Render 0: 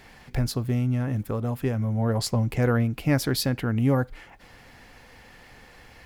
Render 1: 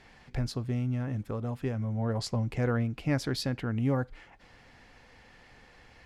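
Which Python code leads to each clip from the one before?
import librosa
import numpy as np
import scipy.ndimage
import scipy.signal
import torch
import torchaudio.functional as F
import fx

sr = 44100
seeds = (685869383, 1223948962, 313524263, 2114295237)

y = scipy.signal.sosfilt(scipy.signal.butter(2, 7300.0, 'lowpass', fs=sr, output='sos'), x)
y = F.gain(torch.from_numpy(y), -6.0).numpy()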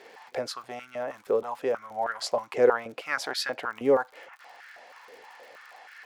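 y = fx.dmg_crackle(x, sr, seeds[0], per_s=66.0, level_db=-47.0)
y = fx.filter_held_highpass(y, sr, hz=6.3, low_hz=440.0, high_hz=1500.0)
y = F.gain(torch.from_numpy(y), 4.0).numpy()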